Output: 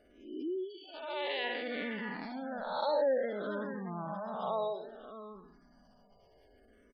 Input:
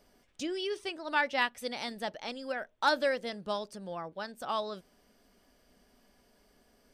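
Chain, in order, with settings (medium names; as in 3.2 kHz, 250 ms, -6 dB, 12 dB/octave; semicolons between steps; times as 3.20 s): spectral blur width 281 ms; 0.64–1.44 s: ten-band graphic EQ 125 Hz +5 dB, 250 Hz -6 dB, 1 kHz -8 dB, 4 kHz +6 dB, 8 kHz -12 dB; delay 613 ms -9 dB; spectral gate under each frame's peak -20 dB strong; peaking EQ 12 kHz -8.5 dB 1.9 oct; barber-pole phaser -0.6 Hz; trim +7.5 dB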